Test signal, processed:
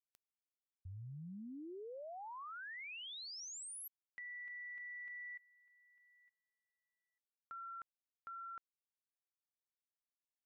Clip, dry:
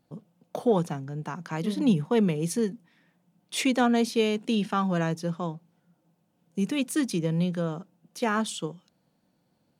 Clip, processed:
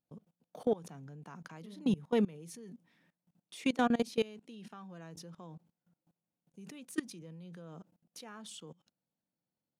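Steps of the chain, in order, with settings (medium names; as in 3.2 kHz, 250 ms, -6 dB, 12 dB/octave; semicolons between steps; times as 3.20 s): level held to a coarse grid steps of 22 dB; trim -4.5 dB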